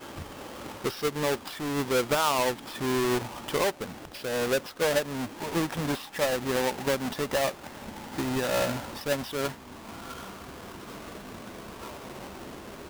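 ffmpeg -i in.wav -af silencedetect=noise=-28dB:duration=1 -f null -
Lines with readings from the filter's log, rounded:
silence_start: 9.48
silence_end: 12.90 | silence_duration: 3.42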